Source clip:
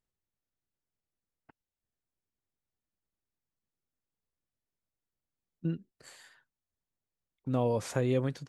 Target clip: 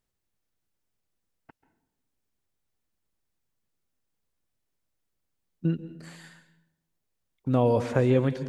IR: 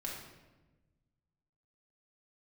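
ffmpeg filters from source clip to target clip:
-filter_complex "[0:a]asplit=2[link_01][link_02];[link_02]asuperstop=centerf=1200:order=4:qfactor=4.8[link_03];[1:a]atrim=start_sample=2205,asetrate=70560,aresample=44100,adelay=136[link_04];[link_03][link_04]afir=irnorm=-1:irlink=0,volume=-9.5dB[link_05];[link_01][link_05]amix=inputs=2:normalize=0,acrossover=split=3300[link_06][link_07];[link_07]acompressor=threshold=-59dB:ratio=4:attack=1:release=60[link_08];[link_06][link_08]amix=inputs=2:normalize=0,volume=6.5dB"

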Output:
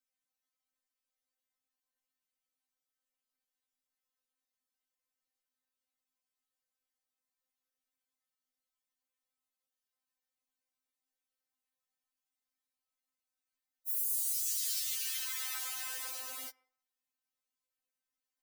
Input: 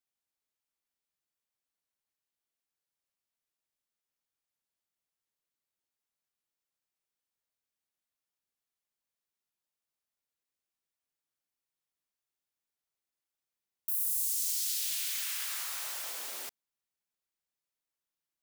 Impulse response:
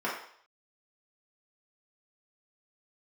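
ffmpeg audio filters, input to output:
-filter_complex "[0:a]asplit=2[link_01][link_02];[1:a]atrim=start_sample=2205,highshelf=frequency=4200:gain=-6.5[link_03];[link_02][link_03]afir=irnorm=-1:irlink=0,volume=-23dB[link_04];[link_01][link_04]amix=inputs=2:normalize=0,afftfilt=real='re*3.46*eq(mod(b,12),0)':imag='im*3.46*eq(mod(b,12),0)':win_size=2048:overlap=0.75"

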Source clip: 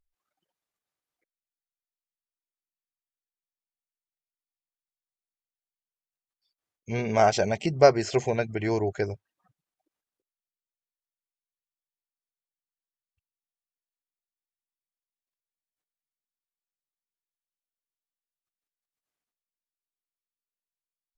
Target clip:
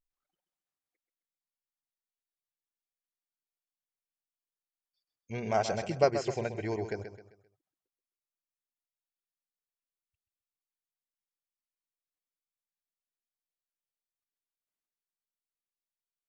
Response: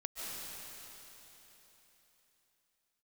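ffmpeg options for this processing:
-af "atempo=1.3,aecho=1:1:131|262|393|524:0.335|0.124|0.0459|0.017,volume=-7.5dB"

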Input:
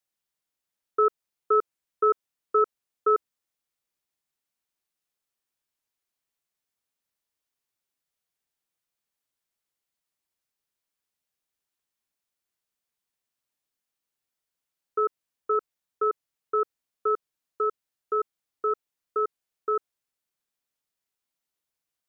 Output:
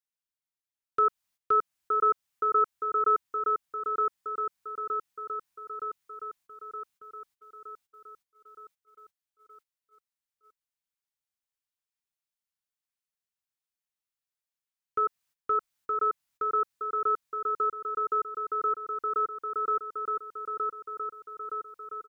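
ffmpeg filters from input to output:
ffmpeg -i in.wav -filter_complex "[0:a]aecho=1:1:918|1836|2754|3672|4590|5508|6426|7344:0.631|0.353|0.198|0.111|0.0621|0.0347|0.0195|0.0109,agate=range=-14dB:threshold=-58dB:ratio=16:detection=peak,equalizer=frequency=410:width_type=o:width=1.3:gain=-10,asplit=2[link_01][link_02];[link_02]acompressor=threshold=-38dB:ratio=6,volume=-2.5dB[link_03];[link_01][link_03]amix=inputs=2:normalize=0" out.wav

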